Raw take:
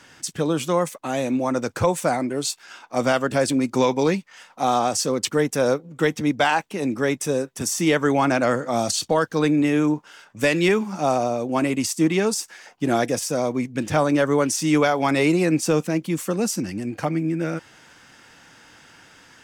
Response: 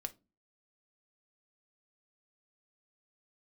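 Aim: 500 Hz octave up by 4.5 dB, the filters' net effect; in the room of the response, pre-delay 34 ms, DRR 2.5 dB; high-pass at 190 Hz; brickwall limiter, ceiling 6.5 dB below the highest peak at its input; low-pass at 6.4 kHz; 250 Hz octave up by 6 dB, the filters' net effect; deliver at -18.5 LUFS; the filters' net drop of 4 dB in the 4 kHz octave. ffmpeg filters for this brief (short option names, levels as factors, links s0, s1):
-filter_complex "[0:a]highpass=190,lowpass=6400,equalizer=f=250:t=o:g=7.5,equalizer=f=500:t=o:g=3.5,equalizer=f=4000:t=o:g=-4.5,alimiter=limit=0.316:level=0:latency=1,asplit=2[s0][s1];[1:a]atrim=start_sample=2205,adelay=34[s2];[s1][s2]afir=irnorm=-1:irlink=0,volume=0.944[s3];[s0][s3]amix=inputs=2:normalize=0,volume=0.891"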